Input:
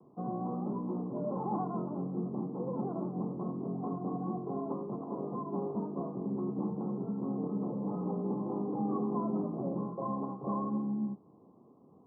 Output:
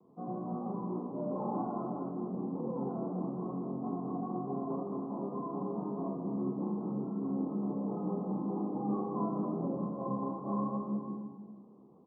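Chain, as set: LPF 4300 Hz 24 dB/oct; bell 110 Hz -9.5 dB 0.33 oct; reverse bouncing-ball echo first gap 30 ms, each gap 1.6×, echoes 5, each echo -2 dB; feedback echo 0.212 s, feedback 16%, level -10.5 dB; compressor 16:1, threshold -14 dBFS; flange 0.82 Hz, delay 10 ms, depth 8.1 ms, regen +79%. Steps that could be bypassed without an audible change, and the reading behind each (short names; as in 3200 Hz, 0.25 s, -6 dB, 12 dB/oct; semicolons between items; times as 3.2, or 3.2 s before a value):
LPF 4300 Hz: input band ends at 1100 Hz; compressor, threshold -14 dBFS: input peak -17.5 dBFS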